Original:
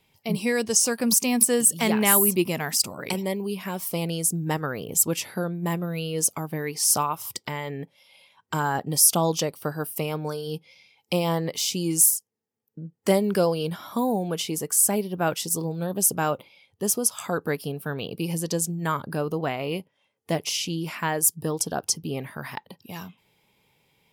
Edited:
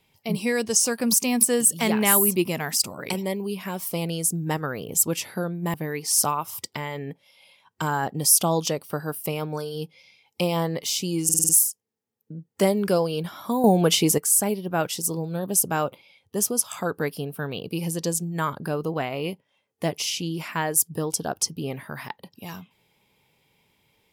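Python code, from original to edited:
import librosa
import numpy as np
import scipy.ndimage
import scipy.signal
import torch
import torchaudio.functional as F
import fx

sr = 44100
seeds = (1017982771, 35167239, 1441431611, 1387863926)

y = fx.edit(x, sr, fx.cut(start_s=5.74, length_s=0.72),
    fx.stutter(start_s=11.96, slice_s=0.05, count=6),
    fx.clip_gain(start_s=14.11, length_s=0.54, db=9.0), tone=tone)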